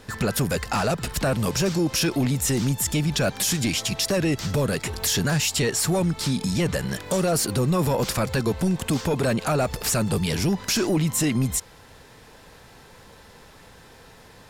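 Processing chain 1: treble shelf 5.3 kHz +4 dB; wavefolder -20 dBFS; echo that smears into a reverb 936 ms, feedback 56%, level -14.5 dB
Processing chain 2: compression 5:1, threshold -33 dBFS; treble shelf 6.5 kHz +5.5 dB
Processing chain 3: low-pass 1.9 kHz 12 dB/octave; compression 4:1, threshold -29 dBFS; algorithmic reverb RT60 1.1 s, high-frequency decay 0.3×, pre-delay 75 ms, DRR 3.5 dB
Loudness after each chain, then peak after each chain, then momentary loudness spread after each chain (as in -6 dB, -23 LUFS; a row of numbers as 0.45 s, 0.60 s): -25.0 LUFS, -33.0 LUFS, -30.5 LUFS; -16.0 dBFS, -16.5 dBFS, -17.0 dBFS; 17 LU, 16 LU, 19 LU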